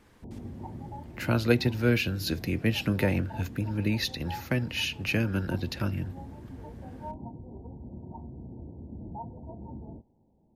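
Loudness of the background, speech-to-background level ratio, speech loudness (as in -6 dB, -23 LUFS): -43.5 LUFS, 14.5 dB, -29.0 LUFS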